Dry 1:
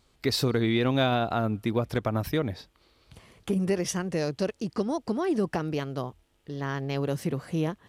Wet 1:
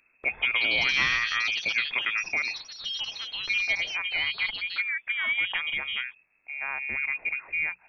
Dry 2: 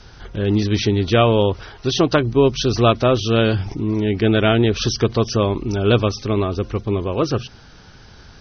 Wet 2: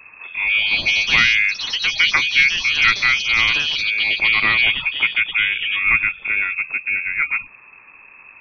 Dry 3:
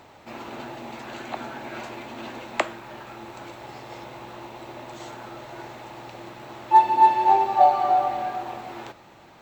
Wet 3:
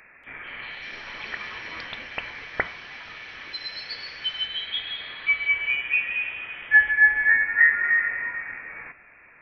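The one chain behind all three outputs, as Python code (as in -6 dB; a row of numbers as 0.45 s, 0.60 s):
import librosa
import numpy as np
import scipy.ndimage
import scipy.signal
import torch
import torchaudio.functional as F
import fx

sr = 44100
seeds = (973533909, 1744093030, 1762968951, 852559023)

y = fx.freq_invert(x, sr, carrier_hz=2600)
y = fx.echo_pitch(y, sr, ms=236, semitones=5, count=3, db_per_echo=-6.0)
y = fx.hum_notches(y, sr, base_hz=60, count=3)
y = y * librosa.db_to_amplitude(-1.5)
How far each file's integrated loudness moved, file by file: +2.0 LU, +2.5 LU, -1.0 LU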